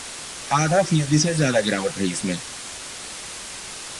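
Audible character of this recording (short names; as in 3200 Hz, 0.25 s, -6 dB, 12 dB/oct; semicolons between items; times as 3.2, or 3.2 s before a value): phasing stages 6, 3.6 Hz, lowest notch 260–1100 Hz; a quantiser's noise floor 6-bit, dither triangular; AAC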